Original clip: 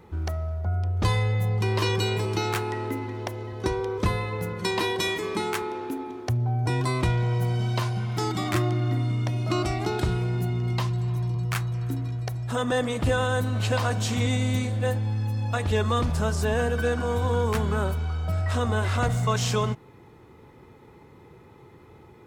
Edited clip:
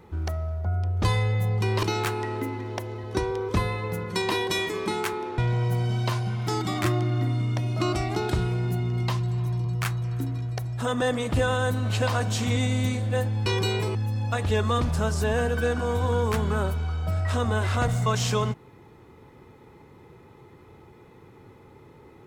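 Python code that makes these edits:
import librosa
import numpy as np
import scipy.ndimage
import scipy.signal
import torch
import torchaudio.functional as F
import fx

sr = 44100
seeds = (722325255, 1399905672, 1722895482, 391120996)

y = fx.edit(x, sr, fx.move(start_s=1.83, length_s=0.49, to_s=15.16),
    fx.cut(start_s=5.87, length_s=1.21), tone=tone)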